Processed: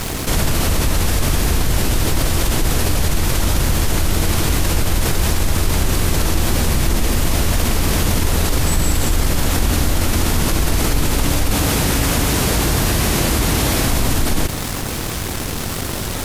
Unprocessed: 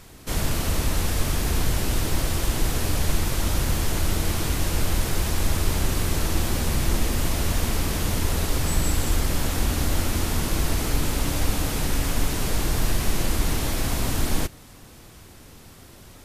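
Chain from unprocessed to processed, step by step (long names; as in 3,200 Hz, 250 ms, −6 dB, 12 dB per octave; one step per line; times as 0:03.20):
0:11.56–0:13.88: high-pass filter 49 Hz
dead-zone distortion −52.5 dBFS
envelope flattener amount 70%
level +2.5 dB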